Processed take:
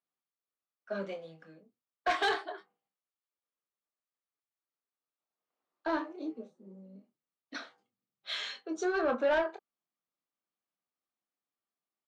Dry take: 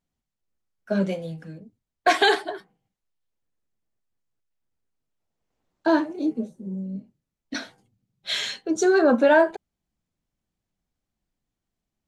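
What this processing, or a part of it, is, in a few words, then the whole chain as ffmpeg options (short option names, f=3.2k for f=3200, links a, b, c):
intercom: -filter_complex "[0:a]highpass=380,lowpass=4.6k,equalizer=f=1.2k:t=o:w=0.26:g=9,asoftclip=type=tanh:threshold=-13.5dB,asplit=2[a][b];[b]adelay=25,volume=-9dB[c];[a][c]amix=inputs=2:normalize=0,volume=-9dB"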